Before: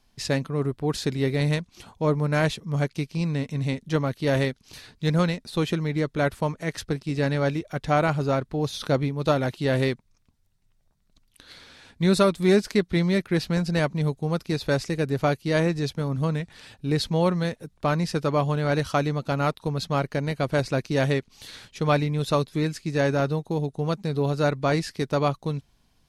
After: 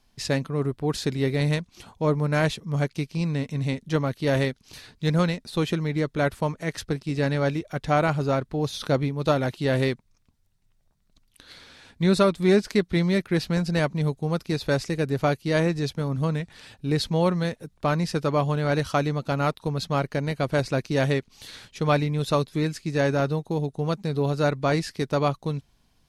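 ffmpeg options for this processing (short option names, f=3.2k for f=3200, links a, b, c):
-filter_complex "[0:a]asettb=1/sr,asplit=3[a][b][c];[a]atrim=end=12.034[d];[b]atrim=start=12.03:end=12.7,asetpts=PTS-STARTPTS,afade=t=in:d=0.004:c=qsin,afade=t=out:st=0.666:d=0.004:c=qsin,highshelf=f=7.8k:g=-6.5[e];[c]atrim=start=12.696[f];[d][e]acrossfade=d=0.004:c1=hsin:c2=qsin[g];[g][f]acrossfade=d=0.004:c1=qsin:c2=hsin"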